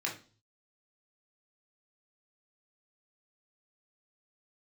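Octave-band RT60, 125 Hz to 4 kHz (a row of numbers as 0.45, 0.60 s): 0.80, 0.45, 0.40, 0.35, 0.35, 0.40 s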